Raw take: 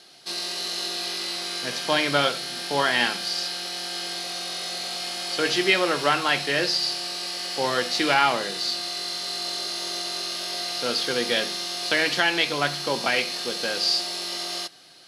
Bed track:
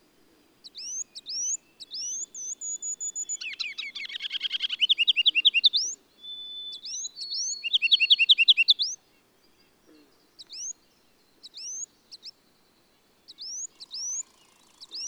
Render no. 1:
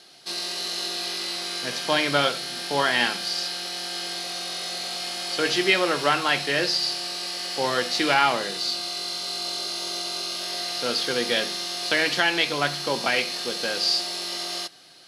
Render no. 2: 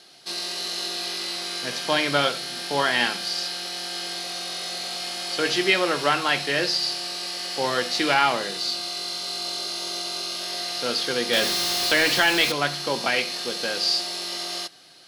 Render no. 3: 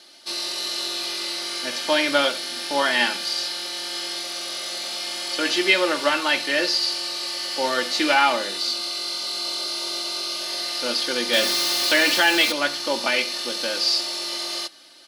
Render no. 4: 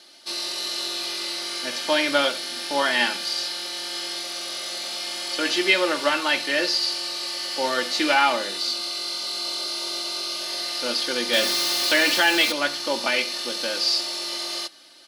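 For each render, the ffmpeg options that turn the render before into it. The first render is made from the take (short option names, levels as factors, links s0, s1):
-filter_complex "[0:a]asettb=1/sr,asplit=3[s0][s1][s2];[s0]atrim=end=8.564[s3];[s1]atrim=start=8.56:end=10.42,asetpts=PTS-STARTPTS,afade=t=in:d=0.004:c=qsin,afade=t=out:st=1.856:d=0.004:c=qsin,bandreject=f=1800:w=6.1[s4];[s2]atrim=start=10.416[s5];[s3][s4]acrossfade=d=0.004:c1=hsin:c2=qsin[s6];[s6][s5]acrossfade=d=0.004:c1=qsin:c2=hsin"
-filter_complex "[0:a]asettb=1/sr,asplit=3[s0][s1][s2];[s0]atrim=end=11.334[s3];[s1]atrim=start=11.33:end=12.52,asetpts=PTS-STARTPTS,afade=t=in:d=0.004:c=qsin,afade=t=out:st=1.186:d=0.004:c=qsin,aeval=exprs='val(0)+0.5*0.0668*sgn(val(0))':c=same[s4];[s2]atrim=start=12.516[s5];[s3][s4]acrossfade=d=0.004:c1=hsin:c2=qsin[s6];[s6][s5]acrossfade=d=0.004:c1=qsin:c2=hsin"
-af "highpass=f=220:p=1,aecho=1:1:3.4:0.72"
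-af "volume=0.891"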